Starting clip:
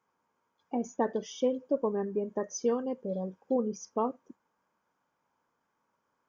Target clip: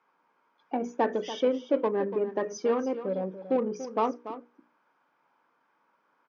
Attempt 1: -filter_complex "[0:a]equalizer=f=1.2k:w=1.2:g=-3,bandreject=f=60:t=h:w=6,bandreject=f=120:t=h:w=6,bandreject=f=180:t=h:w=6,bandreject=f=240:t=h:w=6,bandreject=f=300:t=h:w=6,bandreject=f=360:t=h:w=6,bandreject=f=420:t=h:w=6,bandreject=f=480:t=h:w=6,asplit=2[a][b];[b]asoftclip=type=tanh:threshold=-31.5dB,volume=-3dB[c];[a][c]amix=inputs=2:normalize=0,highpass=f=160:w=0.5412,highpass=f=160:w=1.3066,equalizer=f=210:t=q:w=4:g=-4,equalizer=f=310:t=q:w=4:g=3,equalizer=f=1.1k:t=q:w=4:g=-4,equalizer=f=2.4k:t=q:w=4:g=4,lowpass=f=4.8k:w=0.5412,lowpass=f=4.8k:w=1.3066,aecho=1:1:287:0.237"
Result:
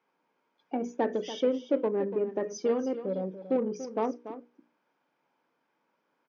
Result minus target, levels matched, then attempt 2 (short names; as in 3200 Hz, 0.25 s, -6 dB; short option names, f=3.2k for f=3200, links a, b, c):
1000 Hz band -4.0 dB
-filter_complex "[0:a]equalizer=f=1.2k:w=1.2:g=7,bandreject=f=60:t=h:w=6,bandreject=f=120:t=h:w=6,bandreject=f=180:t=h:w=6,bandreject=f=240:t=h:w=6,bandreject=f=300:t=h:w=6,bandreject=f=360:t=h:w=6,bandreject=f=420:t=h:w=6,bandreject=f=480:t=h:w=6,asplit=2[a][b];[b]asoftclip=type=tanh:threshold=-31.5dB,volume=-3dB[c];[a][c]amix=inputs=2:normalize=0,highpass=f=160:w=0.5412,highpass=f=160:w=1.3066,equalizer=f=210:t=q:w=4:g=-4,equalizer=f=310:t=q:w=4:g=3,equalizer=f=1.1k:t=q:w=4:g=-4,equalizer=f=2.4k:t=q:w=4:g=4,lowpass=f=4.8k:w=0.5412,lowpass=f=4.8k:w=1.3066,aecho=1:1:287:0.237"